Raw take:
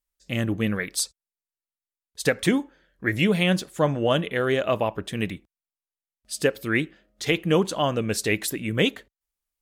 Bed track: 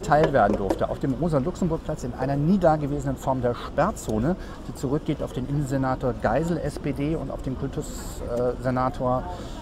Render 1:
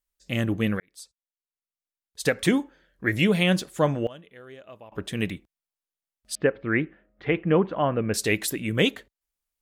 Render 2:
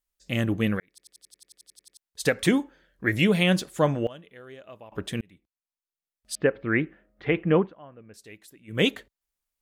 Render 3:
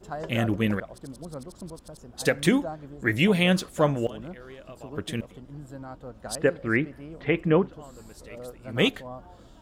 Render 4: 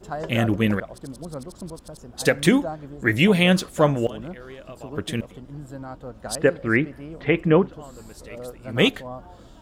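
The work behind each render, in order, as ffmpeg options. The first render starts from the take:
-filter_complex "[0:a]asettb=1/sr,asplit=3[a][b][c];[a]atrim=end=6.354[d];[b]atrim=start=6.35:end=8.14,asetpts=PTS-STARTPTS,afade=t=in:d=0.004:c=qsin,afade=t=out:st=1.786:d=0.004:c=qsin,lowpass=f=2.2k:w=0.5412,lowpass=f=2.2k:w=1.3066[e];[c]atrim=start=8.136[f];[d][e]acrossfade=d=0.004:c1=hsin:c2=qsin[g];[g][f]acrossfade=d=0.004:c1=qsin:c2=hsin,asplit=4[h][i][j][k];[h]atrim=end=0.8,asetpts=PTS-STARTPTS,afade=t=out:st=0.796:d=0.004:c=hsin[l];[i]atrim=start=0.8:end=4.07,asetpts=PTS-STARTPTS,afade=t=in:d=1.73,afade=t=out:st=2.93:d=0.34:c=log:silence=0.0794328[m];[j]atrim=start=4.07:end=4.92,asetpts=PTS-STARTPTS,volume=-22dB[n];[k]atrim=start=4.92,asetpts=PTS-STARTPTS,afade=t=in:d=0.34:c=log:silence=0.0794328[o];[l][m][n][o]concat=n=4:v=0:a=1"
-filter_complex "[0:a]asplit=16[a][b][c][d][e][f][g][h][i][j][k][l][m][n][o][p];[a]atrim=end=0.982[q];[b]atrim=start=0.888:end=0.982[r];[c]atrim=start=0.888:end=0.982[s];[d]atrim=start=0.888:end=0.982[t];[e]atrim=start=0.888:end=0.982[u];[f]atrim=start=0.888:end=0.982[v];[g]atrim=start=0.888:end=0.982[w];[h]atrim=start=0.888:end=0.982[x];[i]atrim=start=0.888:end=0.982[y];[j]atrim=start=0.888:end=0.982[z];[k]atrim=start=0.888:end=0.982[aa];[l]atrim=start=0.888:end=0.982[ab];[m]atrim=start=1.968:end=5.21,asetpts=PTS-STARTPTS,afade=t=out:st=3.238:d=0.004:c=hsin[ac];[n]atrim=start=5.21:end=7.74,asetpts=PTS-STARTPTS,afade=t=in:d=1.29,afade=t=out:st=2.36:d=0.17:silence=0.0707946[ad];[o]atrim=start=7.74:end=8.67,asetpts=PTS-STARTPTS,volume=-23dB[ae];[p]atrim=start=8.67,asetpts=PTS-STARTPTS,afade=t=in:d=0.17:silence=0.0707946[af];[q][r]acrossfade=d=0.004:c1=hsin:c2=hsin[ag];[ag][s]acrossfade=d=0.004:c1=hsin:c2=hsin[ah];[ah][t]acrossfade=d=0.004:c1=hsin:c2=hsin[ai];[ai][u]acrossfade=d=0.004:c1=hsin:c2=hsin[aj];[aj][v]acrossfade=d=0.004:c1=hsin:c2=hsin[ak];[ak][w]acrossfade=d=0.004:c1=hsin:c2=hsin[al];[al][x]acrossfade=d=0.004:c1=hsin:c2=hsin[am];[am][y]acrossfade=d=0.004:c1=hsin:c2=hsin[an];[an][z]acrossfade=d=0.004:c1=hsin:c2=hsin[ao];[ao][aa]acrossfade=d=0.004:c1=hsin:c2=hsin[ap];[ap][ab]acrossfade=d=0.004:c1=hsin:c2=hsin[aq];[ac][ad][ae][af]concat=n=4:v=0:a=1[ar];[aq][ar]acrossfade=d=0.004:c1=hsin:c2=hsin"
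-filter_complex "[1:a]volume=-16dB[a];[0:a][a]amix=inputs=2:normalize=0"
-af "volume=4dB"

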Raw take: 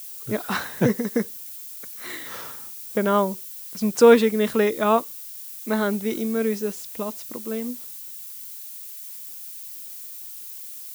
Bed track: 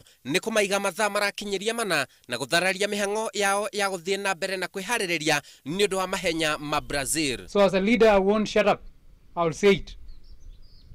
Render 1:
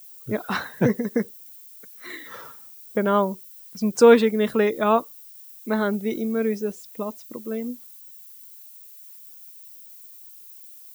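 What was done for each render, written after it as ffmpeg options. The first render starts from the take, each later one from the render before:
-af "afftdn=nr=11:nf=-38"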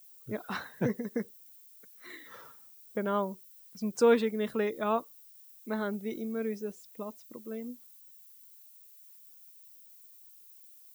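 -af "volume=-10dB"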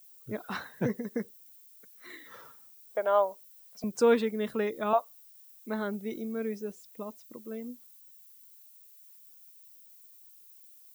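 -filter_complex "[0:a]asettb=1/sr,asplit=3[a][b][c];[a]atrim=end=2.914[d];[b]atrim=start=2.91:end=3.84,asetpts=PTS-STARTPTS,afade=t=in:d=0.004:c=qsin,afade=t=out:st=0.926:d=0.004:c=qsin,highpass=f=670:t=q:w=4.2[e];[c]atrim=start=3.836[f];[d][e]acrossfade=d=0.004:c1=hsin:c2=qsin[g];[g][f]acrossfade=d=0.004:c1=qsin:c2=hsin,asettb=1/sr,asplit=3[h][i][j];[h]atrim=end=4.934[k];[i]atrim=start=4.93:end=5.64,asetpts=PTS-STARTPTS,afade=t=in:d=0.004:c=qsin,afade=t=out:st=0.706:d=0.004:c=qsin,lowshelf=f=450:t=q:w=3:g=-13.5[l];[j]atrim=start=5.636[m];[k][l]acrossfade=d=0.004:c1=hsin:c2=qsin[n];[n][m]acrossfade=d=0.004:c1=qsin:c2=hsin"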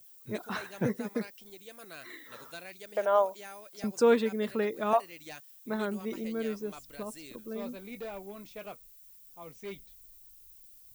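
-filter_complex "[1:a]volume=-23dB[a];[0:a][a]amix=inputs=2:normalize=0"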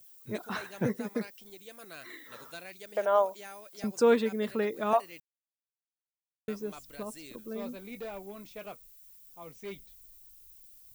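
-filter_complex "[0:a]asplit=3[a][b][c];[a]atrim=end=5.2,asetpts=PTS-STARTPTS,afade=t=out:st=5.196:d=0.004:c=hsin[d];[b]atrim=start=5.2:end=6.48,asetpts=PTS-STARTPTS,volume=0[e];[c]atrim=start=6.48,asetpts=PTS-STARTPTS,afade=t=in:d=0.004:c=hsin[f];[d][e][f]concat=n=3:v=0:a=1"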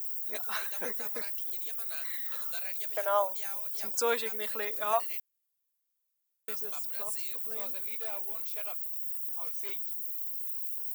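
-af "highpass=680,aemphasis=mode=production:type=50fm"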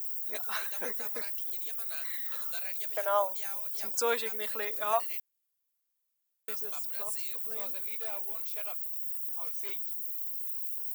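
-af "lowshelf=f=150:g=-6"

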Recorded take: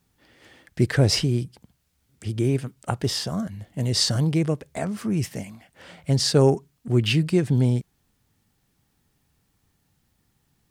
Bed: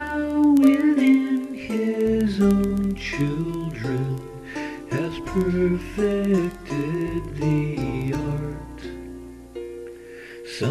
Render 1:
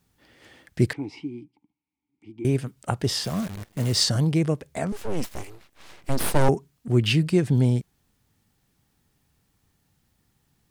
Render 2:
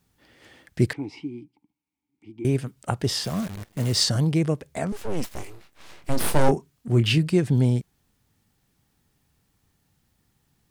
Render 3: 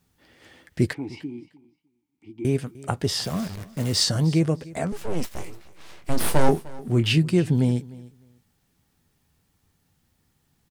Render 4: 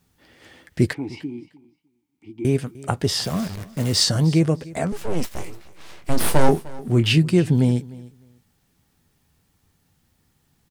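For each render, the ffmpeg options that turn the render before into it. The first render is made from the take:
-filter_complex "[0:a]asettb=1/sr,asplit=3[a][b][c];[a]atrim=end=0.934[d];[b]atrim=start=0.93:end=2.45,asetpts=PTS-STARTPTS,afade=t=in:d=0.004:c=qsin,afade=t=out:st=1.516:d=0.004:c=qsin,asplit=3[e][f][g];[e]bandpass=f=300:t=q:w=8,volume=0dB[h];[f]bandpass=f=870:t=q:w=8,volume=-6dB[i];[g]bandpass=f=2.24k:t=q:w=8,volume=-9dB[j];[h][i][j]amix=inputs=3:normalize=0[k];[c]atrim=start=2.446[l];[d][k]acrossfade=d=0.004:c1=hsin:c2=qsin[m];[m][l]acrossfade=d=0.004:c1=qsin:c2=hsin,asettb=1/sr,asplit=3[n][o][p];[n]atrim=end=3.244[q];[o]atrim=start=3.24:end=4.04,asetpts=PTS-STARTPTS,afade=t=in:d=0.004:c=qsin,afade=t=out:st=0.796:d=0.004:c=qsin,acrusher=bits=7:dc=4:mix=0:aa=0.000001[r];[p]atrim=start=4.036[s];[q][r]acrossfade=d=0.004:c1=hsin:c2=qsin[t];[t][s]acrossfade=d=0.004:c1=qsin:c2=hsin,asettb=1/sr,asplit=3[u][v][w];[u]atrim=end=4.924[x];[v]atrim=start=4.92:end=6.49,asetpts=PTS-STARTPTS,afade=t=in:d=0.004:c=qsin,afade=t=out:st=1.566:d=0.004:c=qsin,aeval=exprs='abs(val(0))':c=same[y];[w]atrim=start=6.486[z];[x][y]acrossfade=d=0.004:c1=hsin:c2=qsin[aa];[aa][z]acrossfade=d=0.004:c1=qsin:c2=hsin"
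-filter_complex "[0:a]asettb=1/sr,asplit=3[a][b][c];[a]atrim=end=5.394[d];[b]atrim=start=5.39:end=7.18,asetpts=PTS-STARTPTS,afade=t=in:d=0.004:c=qsin,afade=t=out:st=1.786:d=0.004:c=qsin,asplit=2[e][f];[f]adelay=26,volume=-9dB[g];[e][g]amix=inputs=2:normalize=0,atrim=end_sample=78939[h];[c]atrim=start=7.176[i];[d][h]acrossfade=d=0.004:c1=hsin:c2=qsin[j];[j][i]acrossfade=d=0.004:c1=qsin:c2=hsin"
-filter_complex "[0:a]asplit=2[a][b];[b]adelay=12,volume=-12dB[c];[a][c]amix=inputs=2:normalize=0,aecho=1:1:303|606:0.0944|0.017"
-af "volume=3dB,alimiter=limit=-3dB:level=0:latency=1"

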